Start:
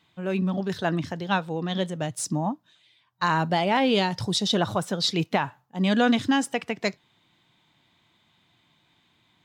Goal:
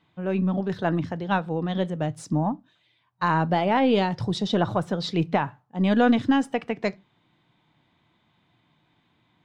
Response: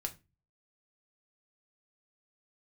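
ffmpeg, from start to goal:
-filter_complex "[0:a]lowpass=frequency=1400:poles=1,aeval=exprs='0.316*(cos(1*acos(clip(val(0)/0.316,-1,1)))-cos(1*PI/2))+0.00631*(cos(4*acos(clip(val(0)/0.316,-1,1)))-cos(4*PI/2))':channel_layout=same,asplit=2[link_01][link_02];[1:a]atrim=start_sample=2205,atrim=end_sample=6615[link_03];[link_02][link_03]afir=irnorm=-1:irlink=0,volume=-10dB[link_04];[link_01][link_04]amix=inputs=2:normalize=0"

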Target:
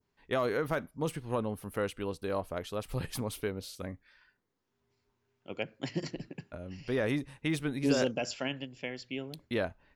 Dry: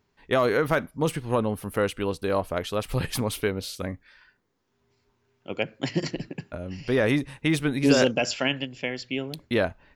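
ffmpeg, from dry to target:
ffmpeg -i in.wav -af "adynamicequalizer=threshold=0.00891:dfrequency=2400:dqfactor=0.71:tfrequency=2400:tqfactor=0.71:attack=5:release=100:ratio=0.375:range=2:mode=cutabove:tftype=bell,volume=-8dB" out.wav

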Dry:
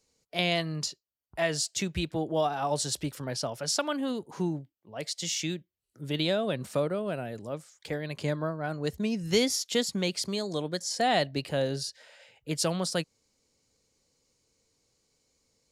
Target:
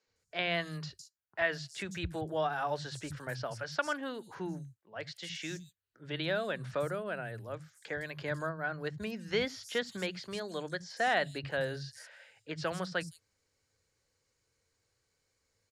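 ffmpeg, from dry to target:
ffmpeg -i in.wav -filter_complex "[0:a]equalizer=frequency=100:width_type=o:width=0.67:gain=8,equalizer=frequency=250:width_type=o:width=0.67:gain=-5,equalizer=frequency=1600:width_type=o:width=0.67:gain=11,acrossover=split=180|5900[link_01][link_02][link_03];[link_01]adelay=70[link_04];[link_03]adelay=160[link_05];[link_04][link_02][link_05]amix=inputs=3:normalize=0,acrossover=split=4000[link_06][link_07];[link_07]acompressor=threshold=-45dB:ratio=4:attack=1:release=60[link_08];[link_06][link_08]amix=inputs=2:normalize=0,volume=-5.5dB" out.wav

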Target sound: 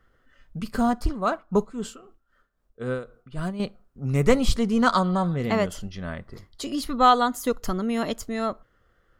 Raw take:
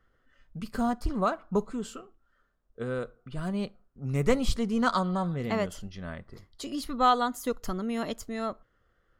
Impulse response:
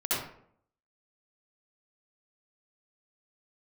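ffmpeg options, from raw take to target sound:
-filter_complex "[0:a]asettb=1/sr,asplit=3[link_01][link_02][link_03];[link_01]atrim=end=1.064[link_04];[link_02]atrim=start=1.06:end=3.6,asetpts=PTS-STARTPTS,afade=type=in:duration=0.004:curve=qsin,afade=type=out:start_time=2.536:duration=0.004:curve=qsin,tremolo=f=3.8:d=0.69[link_05];[link_03]atrim=start=3.596[link_06];[link_04][link_05]acrossfade=duration=0.004:curve1=hsin:curve2=qsin[link_07];[link_07][link_06]acrossfade=duration=0.004:curve1=qsin:curve2=hsin,volume=5.5dB"

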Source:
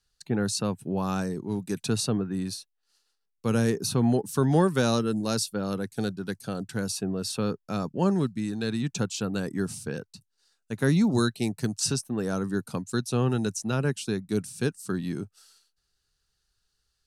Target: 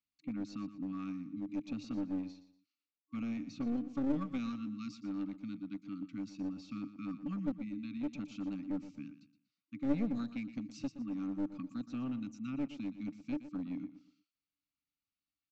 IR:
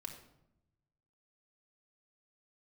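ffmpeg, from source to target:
-filter_complex "[0:a]afftfilt=real='re*(1-between(b*sr/4096,310,1100))':imag='im*(1-between(b*sr/4096,310,1100))':win_size=4096:overlap=0.75,asplit=3[link_01][link_02][link_03];[link_01]bandpass=frequency=300:width_type=q:width=8,volume=0dB[link_04];[link_02]bandpass=frequency=870:width_type=q:width=8,volume=-6dB[link_05];[link_03]bandpass=frequency=2240:width_type=q:width=8,volume=-9dB[link_06];[link_04][link_05][link_06]amix=inputs=3:normalize=0,equalizer=frequency=980:width_type=o:width=1.2:gain=5,aresample=16000,aeval=exprs='clip(val(0),-1,0.0141)':channel_layout=same,aresample=44100,atempo=1.1,asplit=2[link_07][link_08];[link_08]aecho=0:1:119|238|357:0.211|0.0634|0.019[link_09];[link_07][link_09]amix=inputs=2:normalize=0,volume=2dB"

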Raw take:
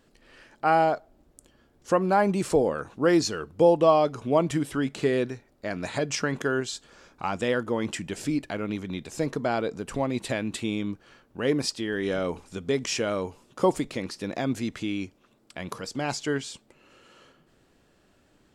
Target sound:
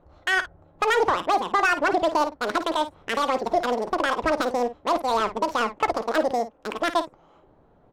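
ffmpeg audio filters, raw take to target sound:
ffmpeg -i in.wav -af "equalizer=frequency=980:width=0.33:gain=-4,alimiter=limit=-20.5dB:level=0:latency=1:release=179,asetrate=103194,aresample=44100,adynamicsmooth=sensitivity=4.5:basefreq=1100,aecho=1:1:13|53:0.15|0.237,volume=9dB" out.wav

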